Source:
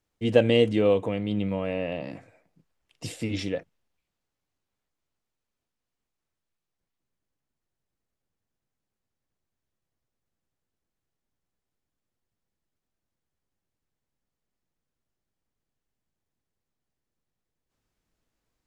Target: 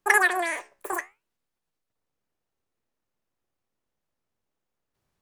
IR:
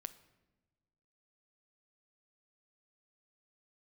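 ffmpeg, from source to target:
-af "asetrate=157878,aresample=44100,flanger=delay=5.5:depth=9.9:regen=-73:speed=0.64:shape=sinusoidal,volume=5.5dB"

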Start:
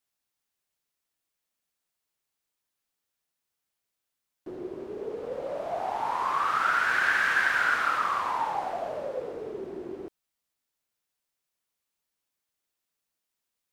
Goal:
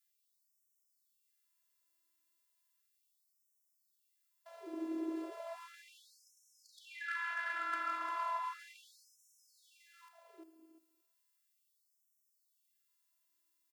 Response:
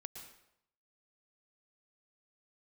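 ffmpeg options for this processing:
-filter_complex "[0:a]acrossover=split=3900[a][b];[b]acompressor=threshold=-58dB:ratio=4:attack=1:release=60[c];[a][c]amix=inputs=2:normalize=0,highshelf=f=9.3k:g=9.5,bandreject=f=360:w=12,areverse,acompressor=threshold=-32dB:ratio=20,areverse,afftfilt=real='hypot(re,im)*cos(PI*b)':imag='0':win_size=512:overlap=0.75,afreqshift=-22,aeval=exprs='0.0398*(cos(1*acos(clip(val(0)/0.0398,-1,1)))-cos(1*PI/2))+0.00447*(cos(3*acos(clip(val(0)/0.0398,-1,1)))-cos(3*PI/2))+0.00178*(cos(5*acos(clip(val(0)/0.0398,-1,1)))-cos(5*PI/2))+0.000282*(cos(6*acos(clip(val(0)/0.0398,-1,1)))-cos(6*PI/2))':c=same,aecho=1:1:350|700|1050:0.422|0.0675|0.0108,afftfilt=real='re*gte(b*sr/1024,240*pow(5400/240,0.5+0.5*sin(2*PI*0.35*pts/sr)))':imag='im*gte(b*sr/1024,240*pow(5400/240,0.5+0.5*sin(2*PI*0.35*pts/sr)))':win_size=1024:overlap=0.75,volume=2.5dB"

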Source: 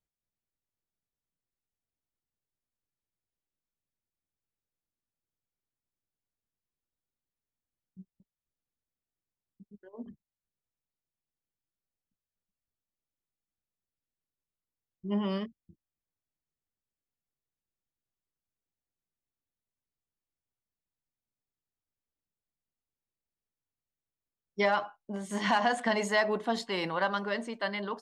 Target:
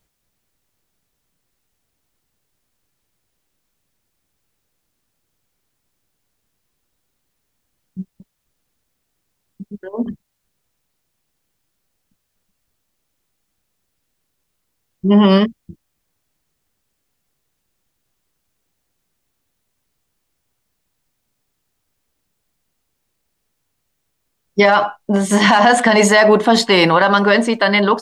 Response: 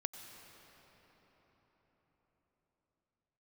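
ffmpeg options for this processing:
-af "alimiter=level_in=22.5dB:limit=-1dB:release=50:level=0:latency=1,volume=-1dB"

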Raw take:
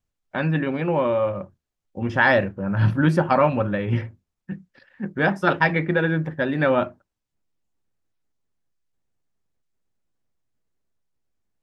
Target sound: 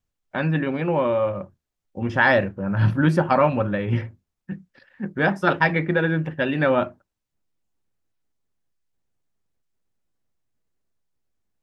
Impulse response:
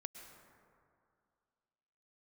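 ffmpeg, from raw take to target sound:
-filter_complex "[0:a]asettb=1/sr,asplit=3[a][b][c];[a]atrim=end=6.184[d];[b]atrim=start=6.18:end=6.59,asetpts=PTS-STARTPTS,afade=t=in:d=0.004:c=qsin,afade=t=out:st=0.406:d=0.004:c=qsin,equalizer=f=2.8k:t=o:w=0.24:g=15[e];[c]atrim=start=6.586[f];[d][e]acrossfade=d=0.004:c1=hsin:c2=qsin[g];[g][f]acrossfade=d=0.004:c1=qsin:c2=hsin"

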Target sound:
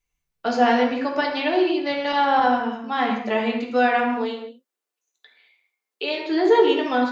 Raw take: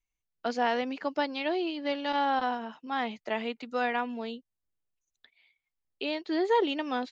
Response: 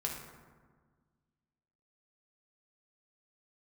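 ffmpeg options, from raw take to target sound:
-filter_complex "[0:a]asplit=3[a][b][c];[a]afade=t=out:st=4.13:d=0.02[d];[b]highpass=f=330:w=0.5412,highpass=f=330:w=1.3066,afade=t=in:st=4.13:d=0.02,afade=t=out:st=6.16:d=0.02[e];[c]afade=t=in:st=6.16:d=0.02[f];[d][e][f]amix=inputs=3:normalize=0[g];[1:a]atrim=start_sample=2205,afade=t=out:st=0.28:d=0.01,atrim=end_sample=12789[h];[g][h]afir=irnorm=-1:irlink=0,volume=7dB"

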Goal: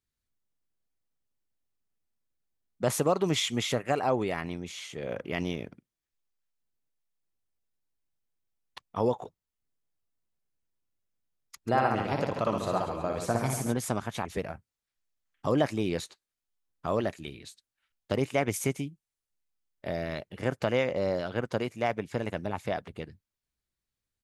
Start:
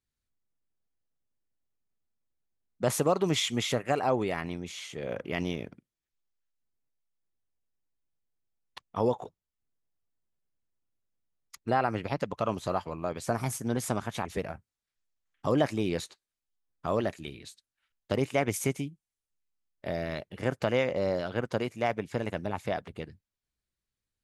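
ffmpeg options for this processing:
-filter_complex "[0:a]asplit=3[a][b][c];[a]afade=t=out:st=11.63:d=0.02[d];[b]aecho=1:1:60|138|239.4|371.2|542.6:0.631|0.398|0.251|0.158|0.1,afade=t=in:st=11.63:d=0.02,afade=t=out:st=13.72:d=0.02[e];[c]afade=t=in:st=13.72:d=0.02[f];[d][e][f]amix=inputs=3:normalize=0"

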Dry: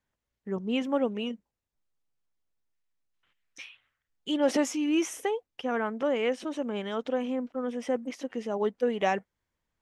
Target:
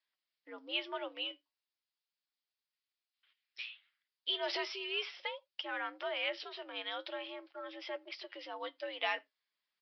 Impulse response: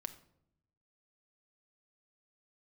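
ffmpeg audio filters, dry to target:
-filter_complex "[0:a]aderivative,afreqshift=82,flanger=delay=4.6:depth=6:regen=64:speed=0.37:shape=triangular,asplit=2[a][b];[1:a]atrim=start_sample=2205,atrim=end_sample=3969[c];[b][c]afir=irnorm=-1:irlink=0,volume=-10.5dB[d];[a][d]amix=inputs=2:normalize=0,aresample=11025,aresample=44100,volume=12dB"

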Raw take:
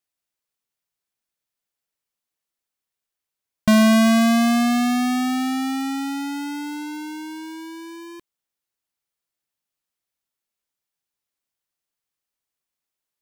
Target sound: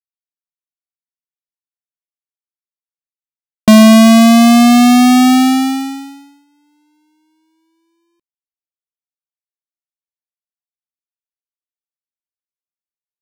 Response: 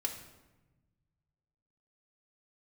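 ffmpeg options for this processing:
-af "equalizer=f=1.6k:w=2.7:g=-7.5,agate=range=-43dB:threshold=-25dB:ratio=16:detection=peak,dynaudnorm=f=270:g=3:m=16.5dB"

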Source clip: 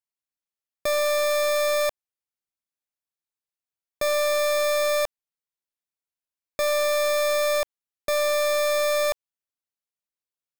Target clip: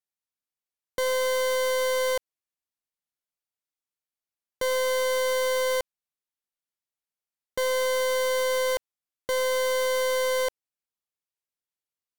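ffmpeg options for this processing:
-af "asetrate=38367,aresample=44100,volume=-2.5dB"

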